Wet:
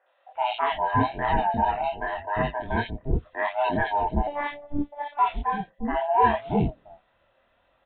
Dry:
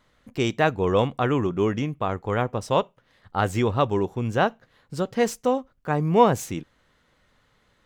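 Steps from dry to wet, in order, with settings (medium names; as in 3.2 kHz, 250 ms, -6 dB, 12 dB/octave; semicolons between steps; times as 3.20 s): split-band scrambler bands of 500 Hz; three bands offset in time mids, highs, lows 60/350 ms, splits 450/2100 Hz; chorus voices 2, 0.83 Hz, delay 25 ms, depth 3.2 ms; 4.27–5.19 s: robot voice 291 Hz; resampled via 8 kHz; trim +2.5 dB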